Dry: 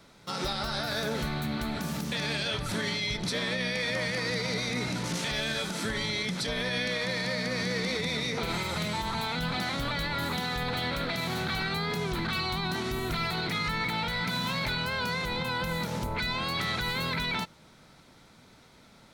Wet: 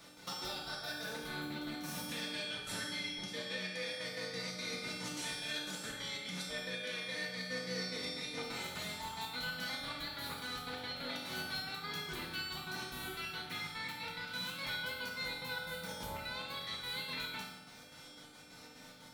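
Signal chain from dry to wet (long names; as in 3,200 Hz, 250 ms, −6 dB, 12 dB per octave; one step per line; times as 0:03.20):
spectral tilt +1.5 dB per octave
downward compressor, threshold −40 dBFS, peak gain reduction 13 dB
gate pattern "x.xx.xx.x." 180 BPM −12 dB
tuned comb filter 300 Hz, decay 0.67 s, mix 90%
convolution reverb RT60 1.2 s, pre-delay 3 ms, DRR −2 dB
level +15 dB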